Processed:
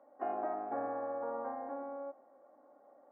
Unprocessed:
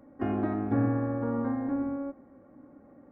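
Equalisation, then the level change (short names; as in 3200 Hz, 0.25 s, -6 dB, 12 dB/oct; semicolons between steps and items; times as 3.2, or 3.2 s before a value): ladder band-pass 800 Hz, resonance 50%; +7.5 dB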